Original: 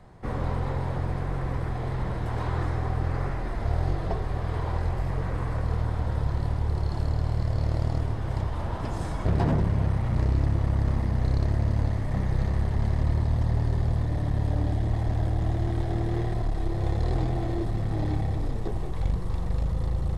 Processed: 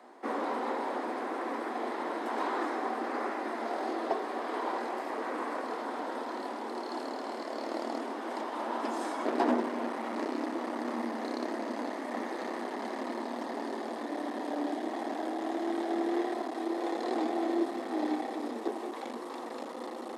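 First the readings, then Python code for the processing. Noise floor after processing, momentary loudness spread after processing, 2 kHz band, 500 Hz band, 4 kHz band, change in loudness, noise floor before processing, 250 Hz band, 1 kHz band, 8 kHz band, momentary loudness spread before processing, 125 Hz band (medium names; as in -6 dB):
-40 dBFS, 6 LU, +2.0 dB, +1.5 dB, +1.0 dB, -6.5 dB, -30 dBFS, -0.5 dB, +3.0 dB, no reading, 5 LU, under -35 dB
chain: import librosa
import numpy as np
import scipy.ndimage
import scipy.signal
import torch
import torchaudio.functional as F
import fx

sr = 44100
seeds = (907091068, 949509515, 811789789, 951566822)

y = scipy.signal.sosfilt(scipy.signal.cheby1(6, 3, 230.0, 'highpass', fs=sr, output='sos'), x)
y = y * librosa.db_to_amplitude(3.5)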